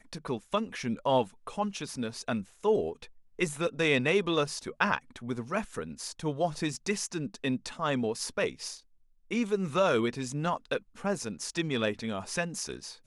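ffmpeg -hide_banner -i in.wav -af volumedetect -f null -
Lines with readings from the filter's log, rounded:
mean_volume: -31.7 dB
max_volume: -11.1 dB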